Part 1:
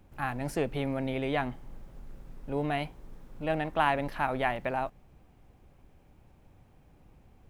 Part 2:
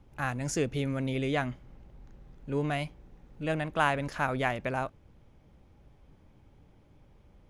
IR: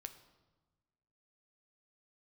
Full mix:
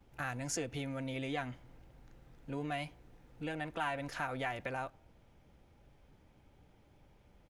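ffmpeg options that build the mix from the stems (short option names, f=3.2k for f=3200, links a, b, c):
-filter_complex "[0:a]volume=-13.5dB,asplit=3[a][b][c];[b]volume=-5dB[d];[1:a]volume=-1,adelay=4.9,volume=-0.5dB[e];[c]apad=whole_len=330527[f];[e][f]sidechaincompress=threshold=-47dB:ratio=8:attack=24:release=151[g];[2:a]atrim=start_sample=2205[h];[d][h]afir=irnorm=-1:irlink=0[i];[a][g][i]amix=inputs=3:normalize=0,lowshelf=f=460:g=-6,bandreject=f=1.1k:w=12"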